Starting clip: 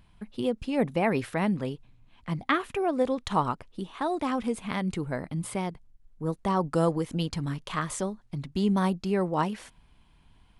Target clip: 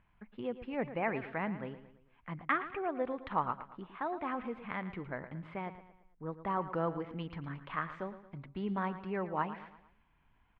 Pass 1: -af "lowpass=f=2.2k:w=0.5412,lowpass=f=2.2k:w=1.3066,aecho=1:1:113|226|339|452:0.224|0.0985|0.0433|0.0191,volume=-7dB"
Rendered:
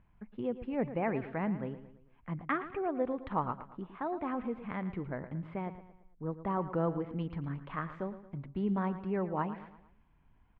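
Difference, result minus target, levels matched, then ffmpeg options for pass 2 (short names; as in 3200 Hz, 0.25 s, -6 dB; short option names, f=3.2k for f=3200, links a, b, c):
1000 Hz band -2.5 dB
-af "lowpass=f=2.2k:w=0.5412,lowpass=f=2.2k:w=1.3066,tiltshelf=f=790:g=-5.5,aecho=1:1:113|226|339|452:0.224|0.0985|0.0433|0.0191,volume=-7dB"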